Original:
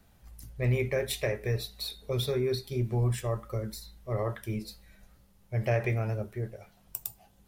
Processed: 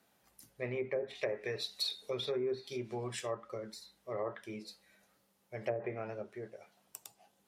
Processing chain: high-pass 290 Hz 12 dB/octave; low-pass that closes with the level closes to 420 Hz, closed at -24 dBFS; 1.15–3.35 s: treble shelf 3.2 kHz +12 dB; trim -4 dB

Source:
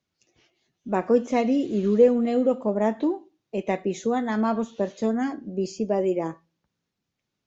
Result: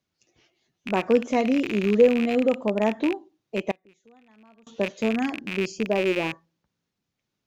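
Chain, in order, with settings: rattle on loud lows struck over -37 dBFS, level -19 dBFS; 3.71–4.67 s: inverted gate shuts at -29 dBFS, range -31 dB

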